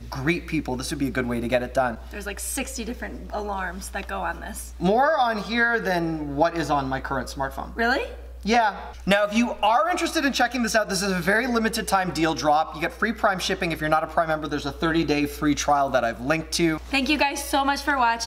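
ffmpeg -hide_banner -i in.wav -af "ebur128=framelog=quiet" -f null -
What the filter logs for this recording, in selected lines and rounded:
Integrated loudness:
  I:         -23.7 LUFS
  Threshold: -33.8 LUFS
Loudness range:
  LRA:         5.3 LU
  Threshold: -43.7 LUFS
  LRA low:   -27.5 LUFS
  LRA high:  -22.2 LUFS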